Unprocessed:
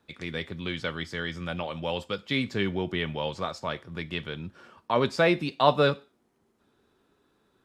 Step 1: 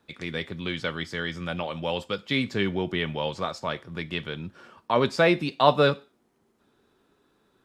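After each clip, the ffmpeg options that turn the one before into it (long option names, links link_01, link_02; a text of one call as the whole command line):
ffmpeg -i in.wav -af "equalizer=frequency=76:width_type=o:width=0.77:gain=-3.5,volume=2dB" out.wav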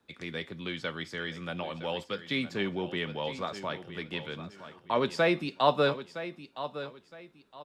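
ffmpeg -i in.wav -filter_complex "[0:a]acrossover=split=130|790|3100[link_01][link_02][link_03][link_04];[link_01]acompressor=threshold=-51dB:ratio=6[link_05];[link_05][link_02][link_03][link_04]amix=inputs=4:normalize=0,aecho=1:1:964|1928|2892:0.237|0.064|0.0173,volume=-5dB" out.wav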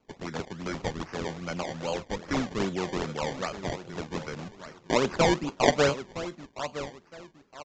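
ffmpeg -i in.wav -af "acrusher=samples=23:mix=1:aa=0.000001:lfo=1:lforange=23:lforate=2.5,aresample=16000,aresample=44100,volume=2.5dB" out.wav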